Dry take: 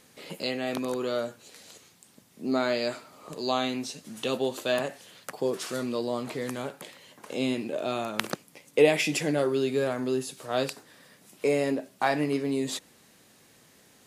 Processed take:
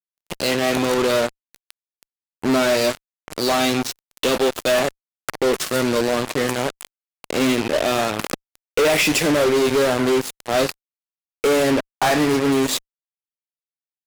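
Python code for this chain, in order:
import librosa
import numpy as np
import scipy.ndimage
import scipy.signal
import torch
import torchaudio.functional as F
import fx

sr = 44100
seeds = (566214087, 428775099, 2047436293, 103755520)

y = fx.highpass(x, sr, hz=190.0, slope=6)
y = fx.high_shelf(y, sr, hz=9400.0, db=-3.0)
y = fx.fuzz(y, sr, gain_db=37.0, gate_db=-35.0)
y = F.gain(torch.from_numpy(y), -1.0).numpy()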